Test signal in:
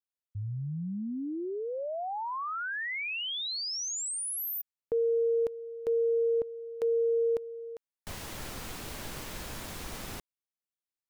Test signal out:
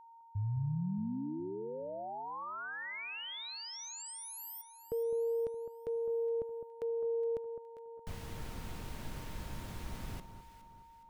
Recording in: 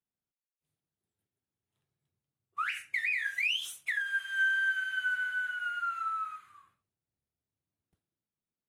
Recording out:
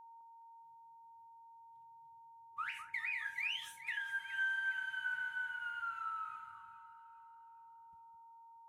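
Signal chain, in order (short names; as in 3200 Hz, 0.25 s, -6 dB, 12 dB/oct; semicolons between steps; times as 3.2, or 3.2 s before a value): tone controls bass +9 dB, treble -4 dB; whine 920 Hz -46 dBFS; echo with dull and thin repeats by turns 0.208 s, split 1400 Hz, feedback 63%, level -9 dB; gain -8 dB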